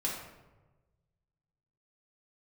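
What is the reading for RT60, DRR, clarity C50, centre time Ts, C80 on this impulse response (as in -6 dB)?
1.2 s, -5.0 dB, 2.5 dB, 50 ms, 5.5 dB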